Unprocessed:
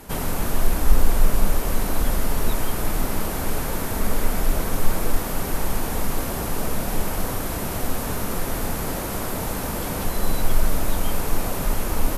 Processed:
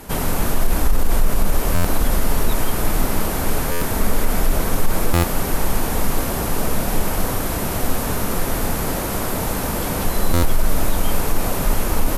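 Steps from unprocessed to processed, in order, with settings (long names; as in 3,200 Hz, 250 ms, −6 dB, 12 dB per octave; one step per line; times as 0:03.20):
buffer that repeats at 0:01.74/0:03.71/0:05.13/0:10.33, samples 512, times 8
boost into a limiter +10 dB
level −5.5 dB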